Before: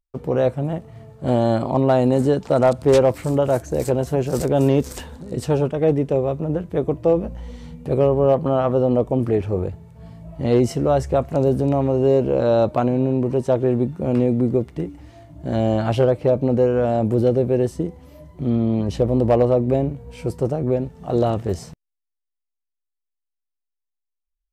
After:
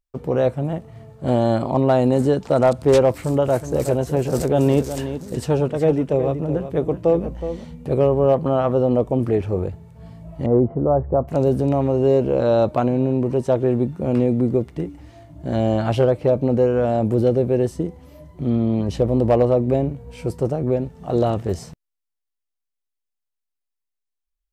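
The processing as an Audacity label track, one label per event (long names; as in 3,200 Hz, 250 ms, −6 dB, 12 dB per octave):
3.110000	7.700000	single-tap delay 370 ms −10.5 dB
10.460000	11.280000	low-pass filter 1,100 Hz 24 dB per octave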